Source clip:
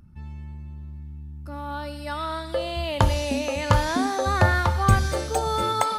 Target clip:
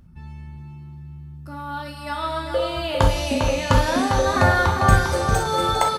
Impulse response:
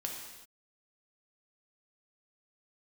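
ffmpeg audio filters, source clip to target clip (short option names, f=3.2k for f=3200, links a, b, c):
-filter_complex "[0:a]asplit=2[a][b];[b]adelay=401,lowpass=f=4.7k:p=1,volume=-6dB,asplit=2[c][d];[d]adelay=401,lowpass=f=4.7k:p=1,volume=0.37,asplit=2[e][f];[f]adelay=401,lowpass=f=4.7k:p=1,volume=0.37,asplit=2[g][h];[h]adelay=401,lowpass=f=4.7k:p=1,volume=0.37[i];[a][c][e][g][i]amix=inputs=5:normalize=0[j];[1:a]atrim=start_sample=2205,atrim=end_sample=3087[k];[j][k]afir=irnorm=-1:irlink=0,volume=3dB"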